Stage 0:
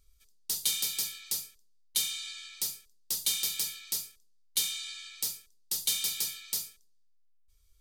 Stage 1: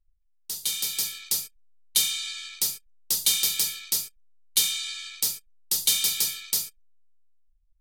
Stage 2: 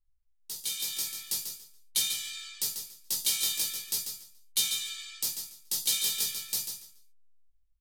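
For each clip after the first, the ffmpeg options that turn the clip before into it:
-af "anlmdn=0.00398,dynaudnorm=f=260:g=7:m=10dB,volume=-2.5dB"
-af "aecho=1:1:142|284|426:0.447|0.0938|0.0197,flanger=delay=15.5:depth=2.5:speed=0.45,volume=-2.5dB"

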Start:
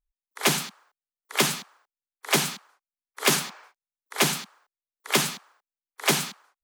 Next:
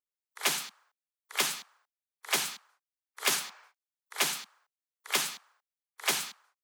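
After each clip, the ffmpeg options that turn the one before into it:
-af "highpass=f=880:p=1,volume=-5dB"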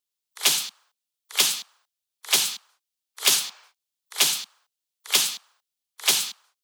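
-af "highshelf=f=2.5k:t=q:w=1.5:g=7,volume=2dB"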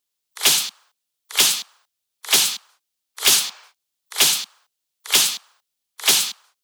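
-af "asoftclip=type=hard:threshold=-14.5dB,volume=6dB"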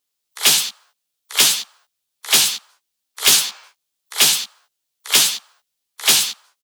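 -filter_complex "[0:a]asplit=2[a][b];[b]adelay=14,volume=-4.5dB[c];[a][c]amix=inputs=2:normalize=0,volume=1dB"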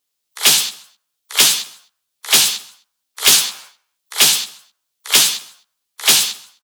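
-af "aecho=1:1:130|260:0.0891|0.0276,volume=2dB"

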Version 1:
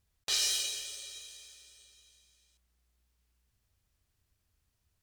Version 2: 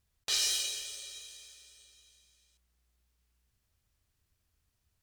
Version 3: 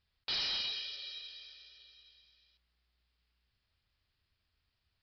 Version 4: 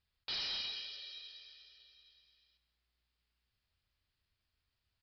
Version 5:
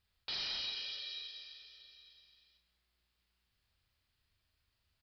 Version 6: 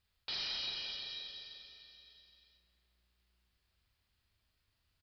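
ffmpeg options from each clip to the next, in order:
-af "bandreject=f=50.45:t=h:w=4,bandreject=f=100.9:t=h:w=4,bandreject=f=151.35:t=h:w=4,bandreject=f=201.8:t=h:w=4,bandreject=f=252.25:t=h:w=4,bandreject=f=302.7:t=h:w=4,bandreject=f=353.15:t=h:w=4,bandreject=f=403.6:t=h:w=4,bandreject=f=454.05:t=h:w=4,bandreject=f=504.5:t=h:w=4,bandreject=f=554.95:t=h:w=4,bandreject=f=605.4:t=h:w=4,bandreject=f=655.85:t=h:w=4,bandreject=f=706.3:t=h:w=4,bandreject=f=756.75:t=h:w=4,bandreject=f=807.2:t=h:w=4,bandreject=f=857.65:t=h:w=4,bandreject=f=908.1:t=h:w=4,bandreject=f=958.55:t=h:w=4,bandreject=f=1.009k:t=h:w=4,bandreject=f=1.05945k:t=h:w=4"
-af "tiltshelf=f=1.2k:g=-4.5,aresample=11025,asoftclip=type=tanh:threshold=-31.5dB,aresample=44100"
-af "aecho=1:1:192:0.224,volume=-4dB"
-filter_complex "[0:a]alimiter=level_in=11dB:limit=-24dB:level=0:latency=1:release=194,volume=-11dB,asplit=2[a][b];[b]adelay=39,volume=-5.5dB[c];[a][c]amix=inputs=2:normalize=0,volume=3dB"
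-filter_complex "[0:a]asplit=2[a][b];[b]adelay=350,lowpass=f=1k:p=1,volume=-4dB,asplit=2[c][d];[d]adelay=350,lowpass=f=1k:p=1,volume=0.48,asplit=2[e][f];[f]adelay=350,lowpass=f=1k:p=1,volume=0.48,asplit=2[g][h];[h]adelay=350,lowpass=f=1k:p=1,volume=0.48,asplit=2[i][j];[j]adelay=350,lowpass=f=1k:p=1,volume=0.48,asplit=2[k][l];[l]adelay=350,lowpass=f=1k:p=1,volume=0.48[m];[a][c][e][g][i][k][m]amix=inputs=7:normalize=0"

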